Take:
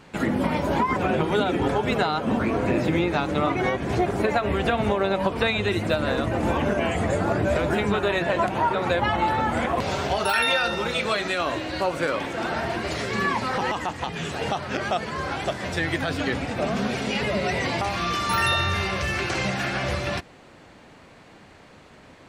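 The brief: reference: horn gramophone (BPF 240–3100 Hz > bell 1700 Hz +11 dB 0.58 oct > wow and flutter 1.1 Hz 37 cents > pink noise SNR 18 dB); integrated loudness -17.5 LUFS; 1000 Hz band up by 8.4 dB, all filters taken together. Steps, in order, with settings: BPF 240–3100 Hz; bell 1000 Hz +8.5 dB; bell 1700 Hz +11 dB 0.58 oct; wow and flutter 1.1 Hz 37 cents; pink noise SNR 18 dB; gain +1 dB

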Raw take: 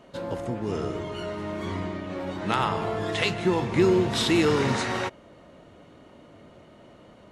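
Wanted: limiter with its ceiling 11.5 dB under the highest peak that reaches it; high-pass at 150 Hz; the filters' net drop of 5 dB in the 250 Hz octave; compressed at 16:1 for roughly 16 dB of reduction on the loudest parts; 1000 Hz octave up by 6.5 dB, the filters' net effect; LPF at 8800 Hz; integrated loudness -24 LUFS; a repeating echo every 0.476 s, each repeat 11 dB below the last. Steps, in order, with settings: HPF 150 Hz; LPF 8800 Hz; bell 250 Hz -8.5 dB; bell 1000 Hz +8.5 dB; compressor 16:1, threshold -31 dBFS; limiter -27.5 dBFS; feedback echo 0.476 s, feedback 28%, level -11 dB; gain +13 dB

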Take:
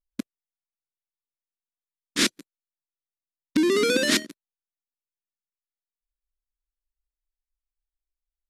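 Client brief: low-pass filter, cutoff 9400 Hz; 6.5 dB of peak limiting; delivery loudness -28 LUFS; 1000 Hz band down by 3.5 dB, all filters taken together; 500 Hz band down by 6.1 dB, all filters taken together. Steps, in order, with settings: LPF 9400 Hz; bell 500 Hz -7.5 dB; bell 1000 Hz -4 dB; gain -1 dB; limiter -16.5 dBFS

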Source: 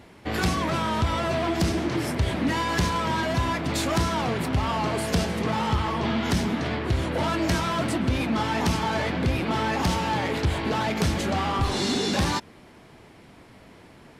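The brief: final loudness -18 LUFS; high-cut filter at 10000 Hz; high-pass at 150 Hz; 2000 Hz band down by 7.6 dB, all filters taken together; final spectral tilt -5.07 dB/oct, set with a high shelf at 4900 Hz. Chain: HPF 150 Hz; LPF 10000 Hz; bell 2000 Hz -8.5 dB; high shelf 4900 Hz -8 dB; gain +10 dB

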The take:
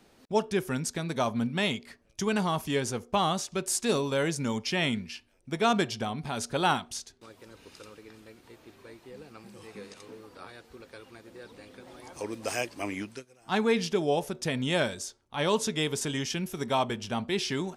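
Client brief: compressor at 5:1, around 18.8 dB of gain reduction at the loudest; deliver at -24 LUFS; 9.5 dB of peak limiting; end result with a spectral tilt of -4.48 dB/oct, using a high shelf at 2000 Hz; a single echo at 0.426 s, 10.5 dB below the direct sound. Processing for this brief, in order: high shelf 2000 Hz -4 dB; compressor 5:1, threshold -43 dBFS; limiter -38.5 dBFS; echo 0.426 s -10.5 dB; gain +24.5 dB

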